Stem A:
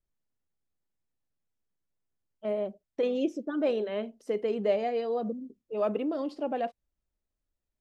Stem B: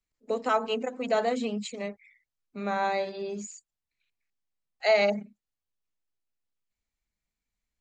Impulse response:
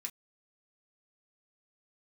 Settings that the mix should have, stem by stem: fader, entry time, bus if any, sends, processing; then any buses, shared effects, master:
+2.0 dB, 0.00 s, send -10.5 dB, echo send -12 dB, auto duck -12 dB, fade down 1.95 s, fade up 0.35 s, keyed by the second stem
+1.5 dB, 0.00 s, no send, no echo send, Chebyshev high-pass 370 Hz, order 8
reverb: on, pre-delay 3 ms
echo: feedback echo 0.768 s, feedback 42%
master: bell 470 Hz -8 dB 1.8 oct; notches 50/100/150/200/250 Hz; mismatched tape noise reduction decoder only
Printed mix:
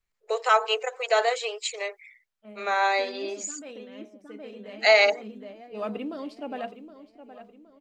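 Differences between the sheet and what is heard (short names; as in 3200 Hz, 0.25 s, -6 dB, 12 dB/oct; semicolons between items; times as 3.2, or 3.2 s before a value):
stem B +1.5 dB -> +9.5 dB; master: missing notches 50/100/150/200/250 Hz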